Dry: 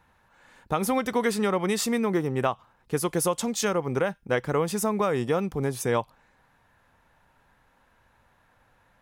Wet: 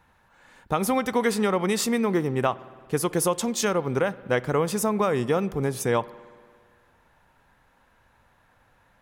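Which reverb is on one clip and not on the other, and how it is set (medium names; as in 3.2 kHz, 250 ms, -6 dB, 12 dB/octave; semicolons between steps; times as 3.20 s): spring tank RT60 1.9 s, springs 56 ms, chirp 45 ms, DRR 18.5 dB; trim +1.5 dB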